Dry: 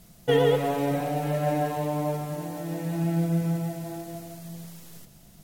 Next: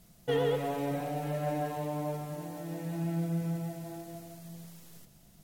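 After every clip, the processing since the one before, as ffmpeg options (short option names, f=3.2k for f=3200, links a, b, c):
-af "asoftclip=type=tanh:threshold=-13.5dB,volume=-6.5dB"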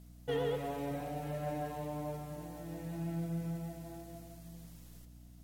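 -af "aeval=exprs='val(0)+0.00398*(sin(2*PI*60*n/s)+sin(2*PI*2*60*n/s)/2+sin(2*PI*3*60*n/s)/3+sin(2*PI*4*60*n/s)/4+sin(2*PI*5*60*n/s)/5)':c=same,volume=-5.5dB"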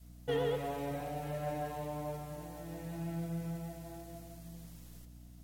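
-af "adynamicequalizer=threshold=0.00224:dfrequency=240:dqfactor=1.2:tfrequency=240:tqfactor=1.2:attack=5:release=100:ratio=0.375:range=2.5:mode=cutabove:tftype=bell,volume=1.5dB"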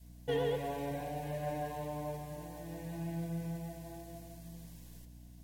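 -af "asuperstop=centerf=1300:order=12:qfactor=5.7"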